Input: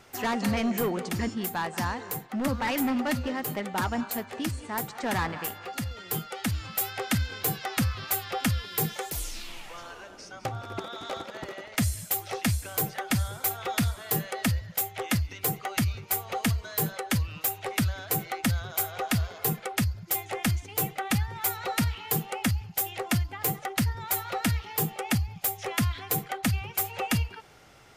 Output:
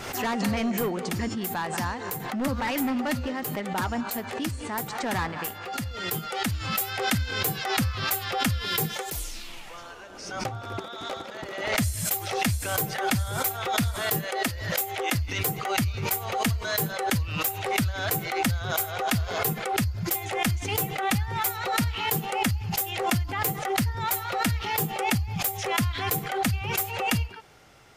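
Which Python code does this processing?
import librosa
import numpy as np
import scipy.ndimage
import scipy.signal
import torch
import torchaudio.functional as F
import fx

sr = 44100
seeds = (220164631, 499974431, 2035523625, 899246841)

y = fx.low_shelf_res(x, sr, hz=240.0, db=-8.0, q=1.5, at=(14.24, 15.15))
y = fx.pre_swell(y, sr, db_per_s=51.0)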